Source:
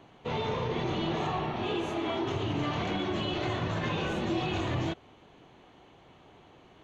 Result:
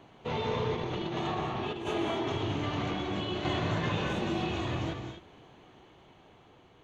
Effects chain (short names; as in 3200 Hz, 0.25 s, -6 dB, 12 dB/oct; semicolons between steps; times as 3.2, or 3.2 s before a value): non-linear reverb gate 0.27 s rising, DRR 4 dB; tremolo saw down 0.58 Hz, depth 45%; 0.75–1.87 negative-ratio compressor -33 dBFS, ratio -0.5